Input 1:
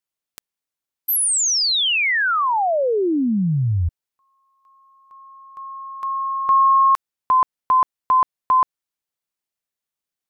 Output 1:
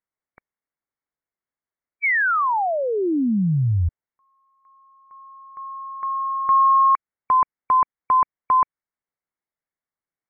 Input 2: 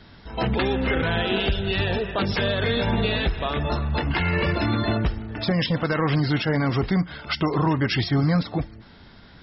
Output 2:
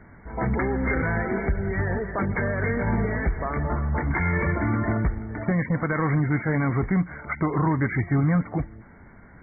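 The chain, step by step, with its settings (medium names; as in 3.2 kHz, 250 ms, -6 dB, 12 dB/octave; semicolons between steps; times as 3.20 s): dynamic bell 540 Hz, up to -4 dB, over -32 dBFS, Q 1.1; brick-wall FIR low-pass 2.3 kHz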